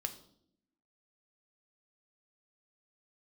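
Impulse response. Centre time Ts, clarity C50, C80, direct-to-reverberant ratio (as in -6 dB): 8 ms, 13.0 dB, 16.0 dB, 6.5 dB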